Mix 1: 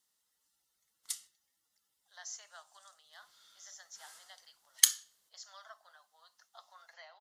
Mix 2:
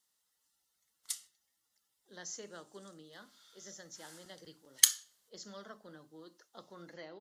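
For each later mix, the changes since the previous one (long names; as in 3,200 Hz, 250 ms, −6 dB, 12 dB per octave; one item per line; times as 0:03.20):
speech: remove Chebyshev high-pass filter 680 Hz, order 5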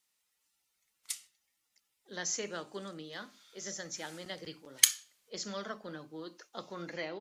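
speech +9.0 dB
master: add parametric band 2,400 Hz +14.5 dB 0.27 octaves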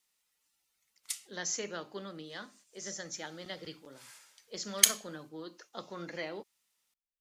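speech: entry −0.80 s
reverb: on, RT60 0.55 s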